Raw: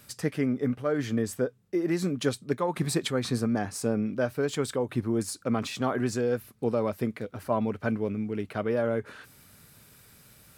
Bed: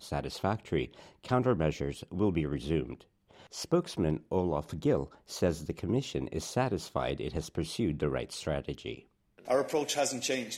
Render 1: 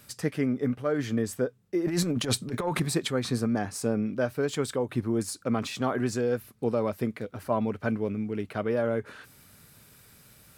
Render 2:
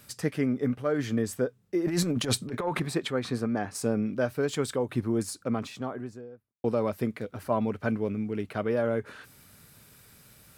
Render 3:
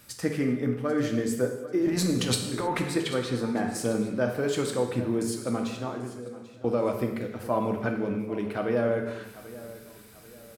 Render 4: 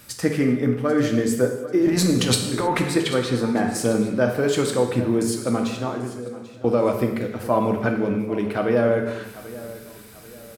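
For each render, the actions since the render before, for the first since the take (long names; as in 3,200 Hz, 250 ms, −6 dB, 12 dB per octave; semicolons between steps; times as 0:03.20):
0:01.86–0:02.80: transient designer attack −12 dB, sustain +11 dB
0:02.47–0:03.75: bass and treble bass −4 dB, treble −8 dB; 0:05.10–0:06.64: fade out and dull
repeating echo 790 ms, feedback 41%, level −17 dB; reverb whose tail is shaped and stops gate 340 ms falling, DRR 3 dB
level +6.5 dB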